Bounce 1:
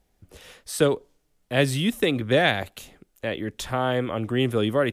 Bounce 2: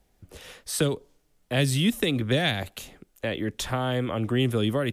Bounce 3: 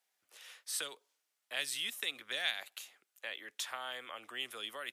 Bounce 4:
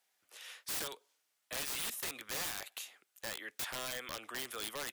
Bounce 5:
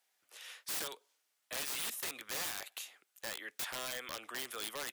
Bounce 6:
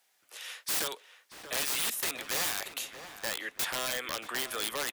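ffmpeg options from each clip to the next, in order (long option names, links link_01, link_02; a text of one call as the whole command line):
ffmpeg -i in.wav -filter_complex "[0:a]acrossover=split=240|3000[link_01][link_02][link_03];[link_02]acompressor=threshold=-29dB:ratio=4[link_04];[link_01][link_04][link_03]amix=inputs=3:normalize=0,volume=2dB" out.wav
ffmpeg -i in.wav -af "highpass=1200,volume=-7dB" out.wav
ffmpeg -i in.wav -af "aeval=exprs='(mod(59.6*val(0)+1,2)-1)/59.6':channel_layout=same,volume=3.5dB" out.wav
ffmpeg -i in.wav -af "lowshelf=frequency=160:gain=-7" out.wav
ffmpeg -i in.wav -filter_complex "[0:a]asplit=2[link_01][link_02];[link_02]adelay=630,lowpass=frequency=2100:poles=1,volume=-10dB,asplit=2[link_03][link_04];[link_04]adelay=630,lowpass=frequency=2100:poles=1,volume=0.44,asplit=2[link_05][link_06];[link_06]adelay=630,lowpass=frequency=2100:poles=1,volume=0.44,asplit=2[link_07][link_08];[link_08]adelay=630,lowpass=frequency=2100:poles=1,volume=0.44,asplit=2[link_09][link_10];[link_10]adelay=630,lowpass=frequency=2100:poles=1,volume=0.44[link_11];[link_01][link_03][link_05][link_07][link_09][link_11]amix=inputs=6:normalize=0,volume=7.5dB" out.wav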